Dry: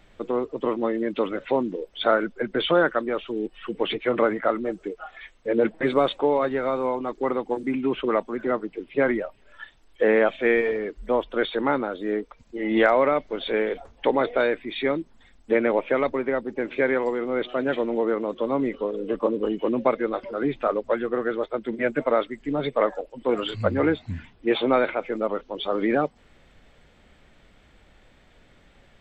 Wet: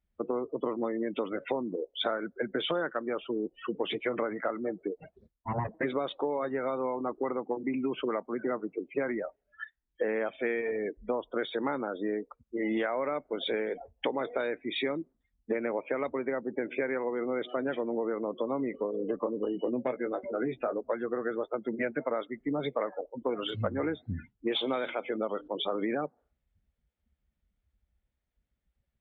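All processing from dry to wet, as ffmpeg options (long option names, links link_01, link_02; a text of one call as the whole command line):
ffmpeg -i in.wav -filter_complex "[0:a]asettb=1/sr,asplit=3[link_01][link_02][link_03];[link_01]atrim=end=4.984[link_04];[link_02]atrim=start=4.98:end=5.69,asetpts=PTS-STARTPTS,afade=type=in:duration=0.004:curve=qsin,afade=type=out:start_time=0.706:duration=0.004:curve=qsin,aeval=exprs='abs(val(0))':channel_layout=same,lowpass=frequency=1100:poles=1[link_05];[link_03]atrim=start=5.686[link_06];[link_04][link_05]acrossfade=duration=0.004:curve1=hsin:curve2=qsin[link_07];[link_07][link_06]acrossfade=duration=0.004:curve1=qsin:curve2=hsin,asettb=1/sr,asplit=3[link_08][link_09][link_10];[link_08]atrim=end=19.454[link_11];[link_09]atrim=start=19.45:end=20.81,asetpts=PTS-STARTPTS,afade=type=in:duration=0.004:curve=qsin,afade=type=out:start_time=1.356:duration=0.004:curve=qsin,equalizer=frequency=1100:width_type=o:width=0.49:gain=-7,asoftclip=type=hard:threshold=-14dB,asplit=2[link_12][link_13];[link_13]adelay=16,volume=-7.5dB[link_14];[link_12][link_14]amix=inputs=2:normalize=0,atrim=end_sample=59976[link_15];[link_10]atrim=start=20.806[link_16];[link_11][link_15]acrossfade=duration=0.004:curve1=hsin:curve2=qsin[link_17];[link_17][link_16]acrossfade=duration=0.004:curve1=qsin:curve2=hsin,asettb=1/sr,asplit=3[link_18][link_19][link_20];[link_18]atrim=end=24.524[link_21];[link_19]atrim=start=24.52:end=25.48,asetpts=PTS-STARTPTS,afade=type=in:duration=0.004:curve=qsin,afade=type=out:start_time=0.956:duration=0.004:curve=qsin,equalizer=frequency=3300:width=3.2:gain=13,bandreject=frequency=60:width_type=h:width=6,bandreject=frequency=120:width_type=h:width=6,bandreject=frequency=180:width_type=h:width=6,bandreject=frequency=240:width_type=h:width=6,bandreject=frequency=300:width_type=h:width=6,acompressor=mode=upward:threshold=-28dB:ratio=2.5:attack=3.2:release=140:knee=2.83:detection=peak[link_22];[link_20]atrim=start=25.476[link_23];[link_21][link_22]acrossfade=duration=0.004:curve1=hsin:curve2=qsin[link_24];[link_24][link_23]acrossfade=duration=0.004:curve1=qsin:curve2=hsin,afftdn=noise_reduction=34:noise_floor=-39,highpass=89,acompressor=threshold=-28dB:ratio=6" out.wav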